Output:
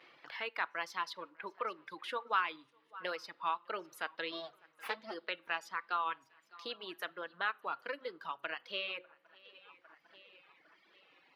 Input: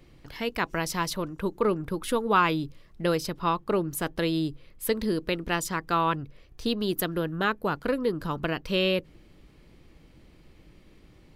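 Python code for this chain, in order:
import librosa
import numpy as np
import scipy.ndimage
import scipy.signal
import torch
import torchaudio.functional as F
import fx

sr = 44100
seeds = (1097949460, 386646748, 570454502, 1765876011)

y = fx.lower_of_two(x, sr, delay_ms=8.4, at=(4.31, 5.14))
y = fx.rider(y, sr, range_db=10, speed_s=2.0)
y = fx.echo_swing(y, sr, ms=801, ratio=3, feedback_pct=33, wet_db=-21)
y = fx.room_shoebox(y, sr, seeds[0], volume_m3=770.0, walls='furnished', distance_m=0.65)
y = fx.vibrato(y, sr, rate_hz=1.4, depth_cents=62.0)
y = scipy.signal.sosfilt(scipy.signal.butter(2, 1000.0, 'highpass', fs=sr, output='sos'), y)
y = fx.high_shelf(y, sr, hz=5100.0, db=7.5)
y = fx.dereverb_blind(y, sr, rt60_s=1.7)
y = fx.air_absorb(y, sr, metres=320.0)
y = fx.band_squash(y, sr, depth_pct=40)
y = y * 10.0 ** (-3.5 / 20.0)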